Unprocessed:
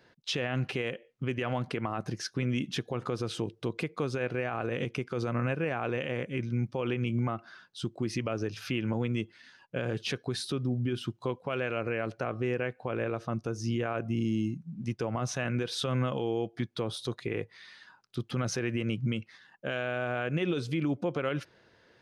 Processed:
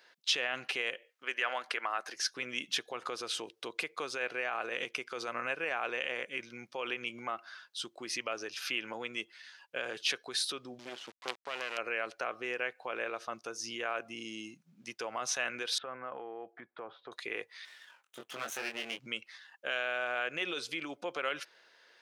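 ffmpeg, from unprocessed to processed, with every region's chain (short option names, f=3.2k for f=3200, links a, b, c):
-filter_complex "[0:a]asettb=1/sr,asplit=3[a][b][c];[a]atrim=end=1.094[d];[b]atrim=start=1.09:end=2.16,asetpts=PTS-STARTPTS,afade=t=in:d=0.004:c=qsin,afade=t=out:st=1.066:d=0.004:c=qsin,highpass=380,equalizer=f=1.6k:t=o:w=0.77:g=5.5[e];[c]atrim=start=2.156[f];[d][e]acrossfade=d=0.004:c1=hsin:c2=qsin[g];[g][f]acrossfade=d=0.004:c1=qsin:c2=hsin,asettb=1/sr,asplit=3[h][i][j];[h]atrim=end=10.794[k];[i]atrim=start=10.79:end=11.78,asetpts=PTS-STARTPTS,afade=t=in:d=0.004:c=qsin,afade=t=out:st=0.986:d=0.004:c=qsin,highshelf=f=2.3k:g=-5,acrusher=bits=5:dc=4:mix=0:aa=0.000001,highpass=110,lowpass=4.7k[l];[j]atrim=start=11.776[m];[k][l]acrossfade=d=0.004:c1=hsin:c2=qsin[n];[n][m]acrossfade=d=0.004:c1=qsin:c2=hsin,asettb=1/sr,asplit=3[o][p][q];[o]atrim=end=15.784[r];[p]atrim=start=15.78:end=17.12,asetpts=PTS-STARTPTS,afade=t=in:d=0.004:c=qsin,afade=t=out:st=1.336:d=0.004:c=qsin,lowpass=f=1.8k:w=0.5412,lowpass=f=1.8k:w=1.3066,equalizer=f=750:w=6.9:g=4,acompressor=threshold=-31dB:ratio=4:attack=3.2:release=140:knee=1:detection=peak[s];[q]atrim=start=17.116[t];[r][s]acrossfade=d=0.004:c1=hsin:c2=qsin[u];[u][t]acrossfade=d=0.004:c1=qsin:c2=hsin,asettb=1/sr,asplit=3[v][w][x];[v]atrim=end=17.654[y];[w]atrim=start=17.65:end=18.99,asetpts=PTS-STARTPTS,afade=t=in:d=0.004:c=qsin,afade=t=out:st=1.336:d=0.004:c=qsin,asuperstop=centerf=4800:order=4:qfactor=1.5,aeval=exprs='max(val(0),0)':c=same,asplit=2[z][aa];[aa]adelay=22,volume=-3.5dB[ab];[z][ab]amix=inputs=2:normalize=0,atrim=end_sample=59094[ac];[x]atrim=start=18.986[ad];[y][ac]acrossfade=d=0.004:c1=hsin:c2=qsin[ae];[ae][ad]acrossfade=d=0.004:c1=qsin:c2=hsin,highpass=500,tiltshelf=f=1.1k:g=-5"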